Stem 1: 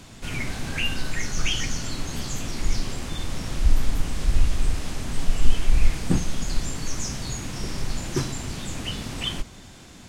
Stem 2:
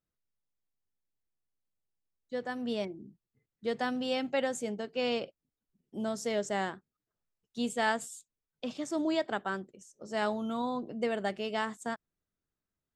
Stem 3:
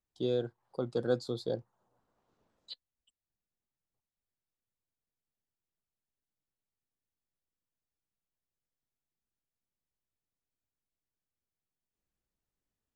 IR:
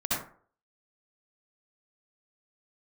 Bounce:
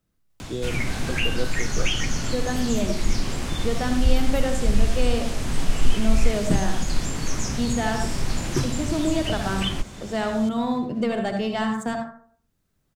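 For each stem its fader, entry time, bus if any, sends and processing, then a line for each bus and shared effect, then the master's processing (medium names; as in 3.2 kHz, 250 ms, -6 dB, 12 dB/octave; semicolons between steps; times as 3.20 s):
+1.0 dB, 0.40 s, no send, none
-2.0 dB, 0.00 s, send -11 dB, bass shelf 360 Hz +7 dB; waveshaping leveller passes 1; gain riding 2 s
-1.5 dB, 0.30 s, no send, none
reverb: on, RT60 0.50 s, pre-delay 57 ms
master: three bands compressed up and down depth 40%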